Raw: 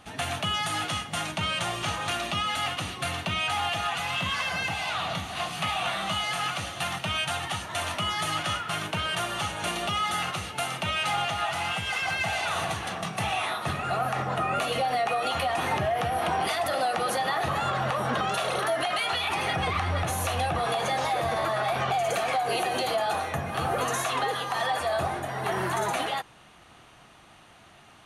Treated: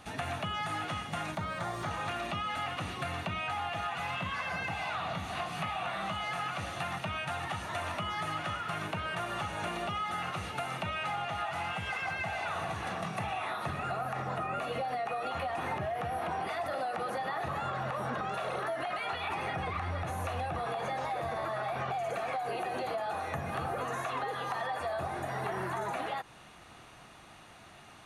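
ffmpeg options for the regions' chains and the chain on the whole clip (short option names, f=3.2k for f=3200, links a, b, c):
-filter_complex "[0:a]asettb=1/sr,asplit=3[a][b][c];[a]atrim=end=1.354[d];[b]atrim=start=1.35:end=1.91,asetpts=PTS-STARTPTS,afade=t=in:d=0.004:c=qsin,afade=t=out:st=0.556:d=0.004:c=qsin,acrossover=split=3600[e][f];[f]acompressor=threshold=-42dB:ratio=4:attack=1:release=60[g];[e][g]amix=inputs=2:normalize=0,equalizer=f=2.7k:t=o:w=0.41:g=-12.5,aeval=exprs='sgn(val(0))*max(abs(val(0))-0.002,0)':c=same[h];[c]atrim=start=1.906[i];[d][h]acrossfade=d=0.004:c1=hsin:c2=qsin[j];[j][i]acrossfade=d=0.004:c1=qsin:c2=hsin,acrossover=split=2500[k][l];[l]acompressor=threshold=-45dB:ratio=4:attack=1:release=60[m];[k][m]amix=inputs=2:normalize=0,bandreject=f=3.1k:w=16,acompressor=threshold=-32dB:ratio=6"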